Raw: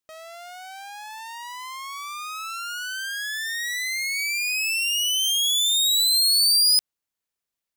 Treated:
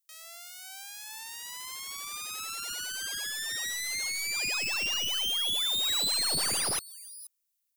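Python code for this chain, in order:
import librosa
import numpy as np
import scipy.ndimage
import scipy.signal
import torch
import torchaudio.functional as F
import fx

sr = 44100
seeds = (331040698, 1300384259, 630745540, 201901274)

p1 = 10.0 ** (-22.0 / 20.0) * (np.abs((x / 10.0 ** (-22.0 / 20.0) + 3.0) % 4.0 - 2.0) - 1.0)
p2 = fx.filter_lfo_highpass(p1, sr, shape='sine', hz=2.3, low_hz=610.0, high_hz=1500.0, q=0.74)
p3 = scipy.signal.lfilter([1.0, -0.9], [1.0], p2)
p4 = p3 + fx.echo_single(p3, sr, ms=478, db=-24.0, dry=0)
p5 = fx.slew_limit(p4, sr, full_power_hz=160.0)
y = F.gain(torch.from_numpy(p5), 4.5).numpy()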